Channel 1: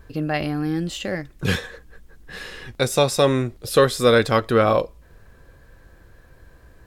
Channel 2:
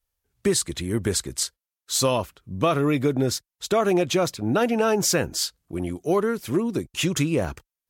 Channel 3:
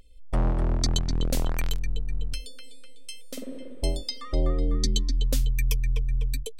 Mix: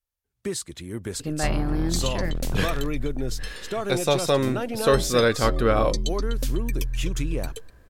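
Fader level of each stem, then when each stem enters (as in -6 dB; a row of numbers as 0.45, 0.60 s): -4.0, -8.0, -2.5 dB; 1.10, 0.00, 1.10 s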